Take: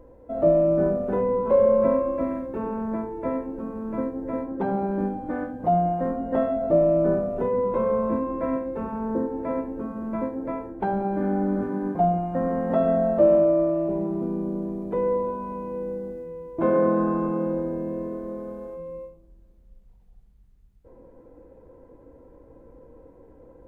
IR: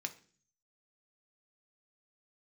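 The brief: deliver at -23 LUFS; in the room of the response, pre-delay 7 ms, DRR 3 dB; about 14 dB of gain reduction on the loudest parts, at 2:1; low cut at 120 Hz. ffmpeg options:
-filter_complex "[0:a]highpass=120,acompressor=threshold=0.00891:ratio=2,asplit=2[s0][s1];[1:a]atrim=start_sample=2205,adelay=7[s2];[s1][s2]afir=irnorm=-1:irlink=0,volume=0.75[s3];[s0][s3]amix=inputs=2:normalize=0,volume=3.76"

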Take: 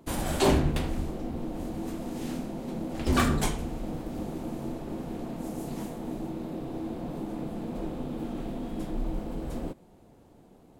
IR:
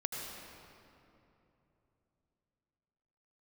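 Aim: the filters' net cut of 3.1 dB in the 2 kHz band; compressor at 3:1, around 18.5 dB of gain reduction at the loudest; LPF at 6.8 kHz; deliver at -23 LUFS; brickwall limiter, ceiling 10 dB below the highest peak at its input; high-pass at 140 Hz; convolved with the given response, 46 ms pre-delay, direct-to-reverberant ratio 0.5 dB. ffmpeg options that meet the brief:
-filter_complex "[0:a]highpass=140,lowpass=6800,equalizer=f=2000:t=o:g=-4,acompressor=threshold=0.00562:ratio=3,alimiter=level_in=4.73:limit=0.0631:level=0:latency=1,volume=0.211,asplit=2[s0][s1];[1:a]atrim=start_sample=2205,adelay=46[s2];[s1][s2]afir=irnorm=-1:irlink=0,volume=0.708[s3];[s0][s3]amix=inputs=2:normalize=0,volume=11.2"

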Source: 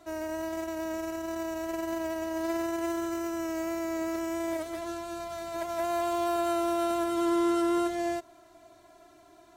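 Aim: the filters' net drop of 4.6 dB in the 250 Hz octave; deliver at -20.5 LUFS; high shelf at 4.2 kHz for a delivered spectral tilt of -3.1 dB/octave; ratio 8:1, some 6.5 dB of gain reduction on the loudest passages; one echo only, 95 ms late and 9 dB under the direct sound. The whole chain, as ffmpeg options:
-af "equalizer=f=250:t=o:g=-8,highshelf=f=4200:g=6.5,acompressor=threshold=0.0224:ratio=8,aecho=1:1:95:0.355,volume=6.31"

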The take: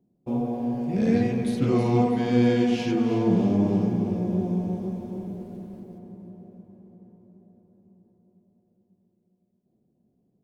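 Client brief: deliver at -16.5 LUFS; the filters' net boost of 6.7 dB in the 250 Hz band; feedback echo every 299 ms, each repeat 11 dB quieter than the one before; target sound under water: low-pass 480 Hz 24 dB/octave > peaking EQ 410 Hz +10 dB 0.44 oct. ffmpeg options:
-af "lowpass=f=480:w=0.5412,lowpass=f=480:w=1.3066,equalizer=f=250:t=o:g=6.5,equalizer=f=410:t=o:w=0.44:g=10,aecho=1:1:299|598|897:0.282|0.0789|0.0221,volume=1.19"

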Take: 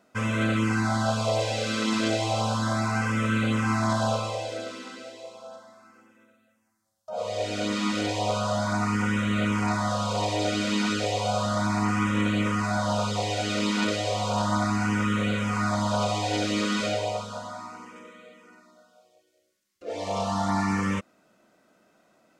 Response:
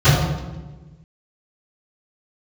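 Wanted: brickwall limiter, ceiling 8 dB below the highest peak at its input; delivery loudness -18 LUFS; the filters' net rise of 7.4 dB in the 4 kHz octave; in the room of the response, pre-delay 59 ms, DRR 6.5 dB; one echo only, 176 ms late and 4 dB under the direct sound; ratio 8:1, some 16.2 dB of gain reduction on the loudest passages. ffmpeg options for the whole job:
-filter_complex "[0:a]equalizer=f=4000:t=o:g=9,acompressor=threshold=0.0126:ratio=8,alimiter=level_in=2.99:limit=0.0631:level=0:latency=1,volume=0.335,aecho=1:1:176:0.631,asplit=2[s0][s1];[1:a]atrim=start_sample=2205,adelay=59[s2];[s1][s2]afir=irnorm=-1:irlink=0,volume=0.0266[s3];[s0][s3]amix=inputs=2:normalize=0,volume=12.6"

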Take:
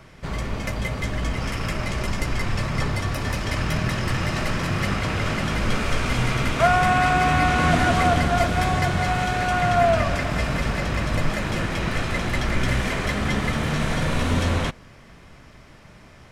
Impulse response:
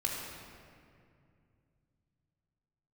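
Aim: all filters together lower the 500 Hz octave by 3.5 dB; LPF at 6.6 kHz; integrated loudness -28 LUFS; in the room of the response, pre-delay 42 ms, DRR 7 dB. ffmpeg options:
-filter_complex "[0:a]lowpass=6600,equalizer=f=500:t=o:g=-5.5,asplit=2[s0][s1];[1:a]atrim=start_sample=2205,adelay=42[s2];[s1][s2]afir=irnorm=-1:irlink=0,volume=0.251[s3];[s0][s3]amix=inputs=2:normalize=0,volume=0.562"

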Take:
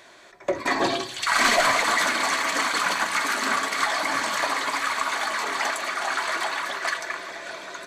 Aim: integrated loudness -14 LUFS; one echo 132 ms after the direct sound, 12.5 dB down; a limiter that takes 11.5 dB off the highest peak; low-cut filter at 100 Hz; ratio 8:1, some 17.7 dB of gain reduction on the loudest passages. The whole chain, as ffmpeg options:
-af "highpass=100,acompressor=threshold=0.0158:ratio=8,alimiter=level_in=3.16:limit=0.0631:level=0:latency=1,volume=0.316,aecho=1:1:132:0.237,volume=23.7"

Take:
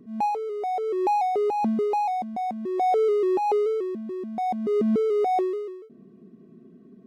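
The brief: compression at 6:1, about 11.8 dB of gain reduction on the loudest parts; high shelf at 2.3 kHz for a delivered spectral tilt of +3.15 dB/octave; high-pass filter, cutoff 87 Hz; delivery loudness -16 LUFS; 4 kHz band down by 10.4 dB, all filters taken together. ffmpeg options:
-af "highpass=87,highshelf=f=2300:g=-9,equalizer=f=4000:t=o:g=-5,acompressor=threshold=0.02:ratio=6,volume=9.44"

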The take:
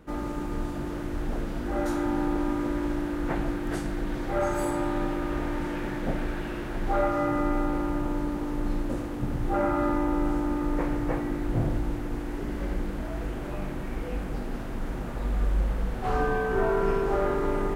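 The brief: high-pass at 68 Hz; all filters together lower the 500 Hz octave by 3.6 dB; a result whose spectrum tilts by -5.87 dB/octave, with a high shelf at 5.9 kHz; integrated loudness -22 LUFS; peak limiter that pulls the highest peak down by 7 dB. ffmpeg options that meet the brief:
-af "highpass=68,equalizer=f=500:t=o:g=-5,highshelf=f=5900:g=8,volume=3.55,alimiter=limit=0.266:level=0:latency=1"

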